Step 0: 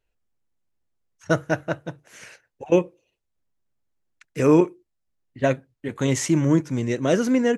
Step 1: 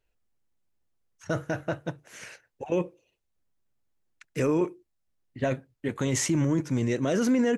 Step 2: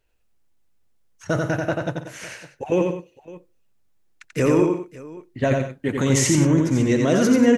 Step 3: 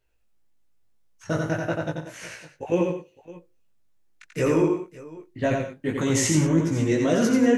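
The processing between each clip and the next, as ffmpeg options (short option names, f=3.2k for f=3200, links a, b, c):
-af "alimiter=limit=-17dB:level=0:latency=1:release=15"
-af "aecho=1:1:88|139|185|559:0.668|0.178|0.211|0.106,volume=6dB"
-af "flanger=delay=17.5:depth=2:speed=1.8"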